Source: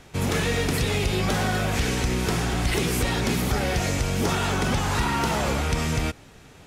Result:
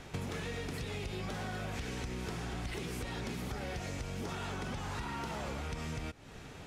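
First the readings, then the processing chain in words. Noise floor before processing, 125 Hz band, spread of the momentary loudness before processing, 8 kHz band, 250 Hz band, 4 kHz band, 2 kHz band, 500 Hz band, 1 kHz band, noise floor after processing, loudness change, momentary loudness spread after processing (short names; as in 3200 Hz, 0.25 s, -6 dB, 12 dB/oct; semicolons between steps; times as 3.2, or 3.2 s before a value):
-49 dBFS, -15.0 dB, 1 LU, -18.0 dB, -15.0 dB, -16.0 dB, -15.0 dB, -15.0 dB, -15.0 dB, -50 dBFS, -15.5 dB, 1 LU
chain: compressor 12:1, threshold -36 dBFS, peak gain reduction 17 dB; high shelf 8500 Hz -8 dB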